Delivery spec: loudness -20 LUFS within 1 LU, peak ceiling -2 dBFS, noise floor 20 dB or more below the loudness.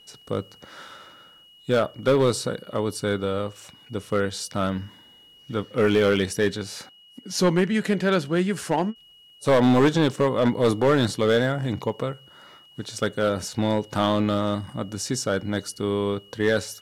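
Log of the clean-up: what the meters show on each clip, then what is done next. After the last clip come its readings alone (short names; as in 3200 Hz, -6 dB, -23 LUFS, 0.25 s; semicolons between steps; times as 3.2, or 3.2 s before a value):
clipped 1.1%; flat tops at -13.0 dBFS; steady tone 2900 Hz; tone level -50 dBFS; loudness -24.0 LUFS; peak -13.0 dBFS; loudness target -20.0 LUFS
-> clip repair -13 dBFS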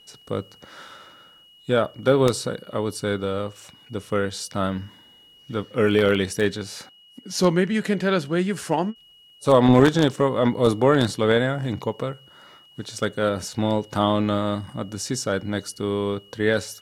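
clipped 0.0%; steady tone 2900 Hz; tone level -50 dBFS
-> notch 2900 Hz, Q 30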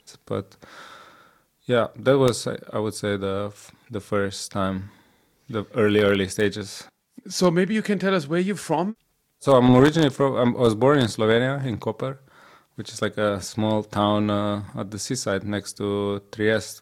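steady tone none; loudness -23.0 LUFS; peak -4.0 dBFS; loudness target -20.0 LUFS
-> gain +3 dB; limiter -2 dBFS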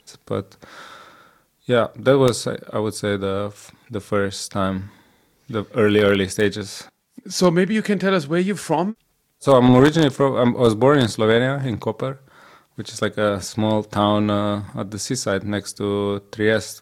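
loudness -20.0 LUFS; peak -2.0 dBFS; noise floor -64 dBFS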